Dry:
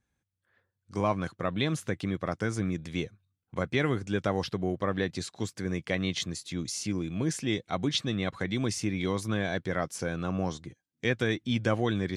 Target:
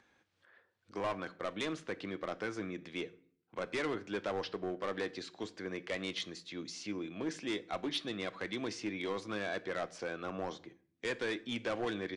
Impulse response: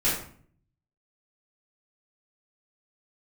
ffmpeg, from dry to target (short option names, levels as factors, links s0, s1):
-filter_complex "[0:a]acrossover=split=260 5100:gain=0.1 1 0.0891[s0][s1][s2];[s0][s1][s2]amix=inputs=3:normalize=0,acompressor=mode=upward:threshold=0.00282:ratio=2.5,volume=23.7,asoftclip=hard,volume=0.0422,asplit=2[s3][s4];[1:a]atrim=start_sample=2205,lowpass=8900[s5];[s4][s5]afir=irnorm=-1:irlink=0,volume=0.0501[s6];[s3][s6]amix=inputs=2:normalize=0,aresample=22050,aresample=44100,volume=0.668"